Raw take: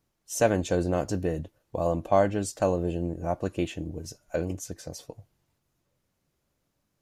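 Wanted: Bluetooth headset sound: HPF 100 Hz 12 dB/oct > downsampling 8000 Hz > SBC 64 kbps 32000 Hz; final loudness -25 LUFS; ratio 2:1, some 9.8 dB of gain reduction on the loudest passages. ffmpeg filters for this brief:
-af "acompressor=threshold=-34dB:ratio=2,highpass=100,aresample=8000,aresample=44100,volume=11.5dB" -ar 32000 -c:a sbc -b:a 64k

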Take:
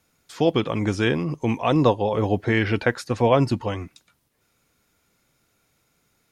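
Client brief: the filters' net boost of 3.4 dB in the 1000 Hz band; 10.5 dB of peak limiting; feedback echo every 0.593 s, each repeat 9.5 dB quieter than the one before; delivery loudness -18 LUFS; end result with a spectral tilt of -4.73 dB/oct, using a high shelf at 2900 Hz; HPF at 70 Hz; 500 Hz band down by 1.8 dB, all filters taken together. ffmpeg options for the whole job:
-af "highpass=70,equalizer=f=500:t=o:g=-3.5,equalizer=f=1k:t=o:g=4.5,highshelf=f=2.9k:g=7.5,alimiter=limit=-12.5dB:level=0:latency=1,aecho=1:1:593|1186|1779|2372:0.335|0.111|0.0365|0.012,volume=7.5dB"

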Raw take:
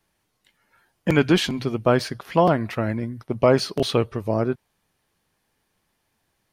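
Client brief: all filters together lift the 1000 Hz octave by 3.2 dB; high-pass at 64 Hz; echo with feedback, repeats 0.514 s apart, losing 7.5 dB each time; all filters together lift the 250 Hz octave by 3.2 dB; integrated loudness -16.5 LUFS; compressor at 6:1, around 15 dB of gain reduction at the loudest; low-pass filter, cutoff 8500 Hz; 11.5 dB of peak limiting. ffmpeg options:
-af "highpass=64,lowpass=8.5k,equalizer=f=250:t=o:g=4,equalizer=f=1k:t=o:g=4,acompressor=threshold=-26dB:ratio=6,alimiter=limit=-23.5dB:level=0:latency=1,aecho=1:1:514|1028|1542|2056|2570:0.422|0.177|0.0744|0.0312|0.0131,volume=18.5dB"

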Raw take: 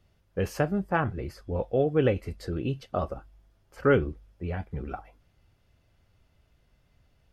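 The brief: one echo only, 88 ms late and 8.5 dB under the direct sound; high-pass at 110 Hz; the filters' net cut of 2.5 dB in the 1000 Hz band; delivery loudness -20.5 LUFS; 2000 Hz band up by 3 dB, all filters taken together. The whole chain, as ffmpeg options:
-af "highpass=110,equalizer=f=1k:t=o:g=-6.5,equalizer=f=2k:t=o:g=7.5,aecho=1:1:88:0.376,volume=9dB"

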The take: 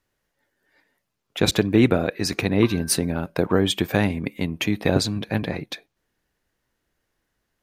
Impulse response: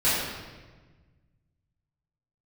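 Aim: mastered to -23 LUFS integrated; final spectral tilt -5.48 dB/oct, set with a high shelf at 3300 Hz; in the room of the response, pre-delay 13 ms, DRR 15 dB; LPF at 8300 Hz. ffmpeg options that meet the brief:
-filter_complex "[0:a]lowpass=8.3k,highshelf=f=3.3k:g=-4.5,asplit=2[a][b];[1:a]atrim=start_sample=2205,adelay=13[c];[b][c]afir=irnorm=-1:irlink=0,volume=-30.5dB[d];[a][d]amix=inputs=2:normalize=0"

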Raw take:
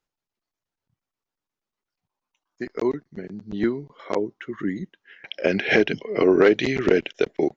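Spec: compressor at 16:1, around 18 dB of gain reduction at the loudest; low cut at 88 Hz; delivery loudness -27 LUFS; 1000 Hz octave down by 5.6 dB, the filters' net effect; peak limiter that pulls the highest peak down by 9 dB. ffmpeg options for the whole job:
-af "highpass=88,equalizer=f=1k:t=o:g=-8,acompressor=threshold=-31dB:ratio=16,volume=12dB,alimiter=limit=-14.5dB:level=0:latency=1"

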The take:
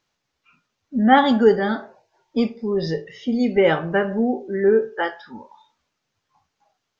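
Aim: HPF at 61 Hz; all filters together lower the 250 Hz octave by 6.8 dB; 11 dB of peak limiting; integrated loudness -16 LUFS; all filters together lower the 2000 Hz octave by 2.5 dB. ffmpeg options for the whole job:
-af "highpass=61,equalizer=f=250:t=o:g=-8,equalizer=f=2k:t=o:g=-3,volume=10.5dB,alimiter=limit=-4.5dB:level=0:latency=1"

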